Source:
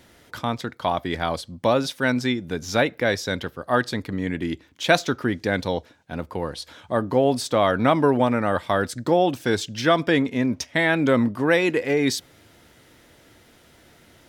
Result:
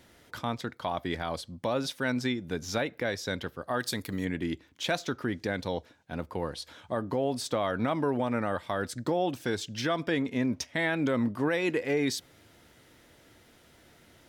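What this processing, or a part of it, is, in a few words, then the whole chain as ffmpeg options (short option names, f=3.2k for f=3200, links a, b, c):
clipper into limiter: -filter_complex "[0:a]asettb=1/sr,asplit=3[a][b][c];[a]atrim=end=3.804[d];[b]atrim=start=3.8:end=4.25,asetpts=PTS-STARTPTS,afade=t=in:d=0.004:c=qsin,afade=t=out:st=0.446:d=0.004:c=qsin,aemphasis=mode=production:type=75fm[e];[c]atrim=start=4.246[f];[d][e]acrossfade=d=0.004:c1=hsin:c2=qsin[g];[g][f]acrossfade=d=0.004:c1=qsin:c2=hsin,asoftclip=type=hard:threshold=-6dB,alimiter=limit=-13.5dB:level=0:latency=1:release=188,volume=-5dB"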